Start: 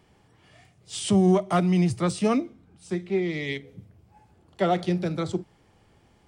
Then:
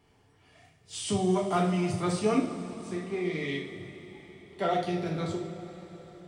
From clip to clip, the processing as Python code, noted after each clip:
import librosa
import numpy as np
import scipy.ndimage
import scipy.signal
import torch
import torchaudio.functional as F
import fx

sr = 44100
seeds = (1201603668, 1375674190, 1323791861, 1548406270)

y = fx.rev_double_slope(x, sr, seeds[0], early_s=0.47, late_s=5.0, knee_db=-17, drr_db=-2.5)
y = F.gain(torch.from_numpy(y), -7.0).numpy()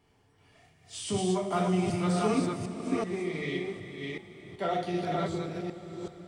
y = fx.reverse_delay(x, sr, ms=380, wet_db=-2.0)
y = F.gain(torch.from_numpy(y), -2.5).numpy()